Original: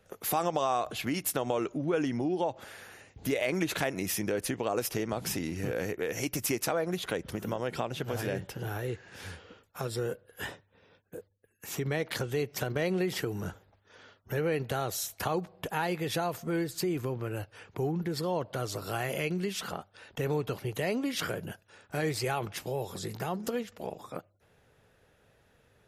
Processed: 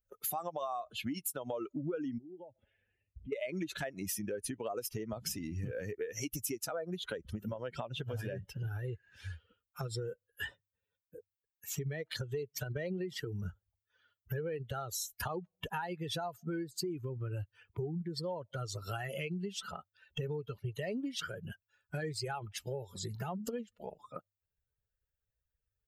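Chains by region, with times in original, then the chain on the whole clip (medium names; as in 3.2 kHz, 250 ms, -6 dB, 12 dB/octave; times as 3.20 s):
2.18–3.33 s: low-pass 2.8 kHz 24 dB/octave + peaking EQ 1.3 kHz -14 dB 1.4 oct + compression 2:1, threshold -46 dBFS
whole clip: expander on every frequency bin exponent 2; dynamic bell 2.3 kHz, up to -5 dB, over -55 dBFS, Q 2.6; compression 6:1, threshold -47 dBFS; trim +11 dB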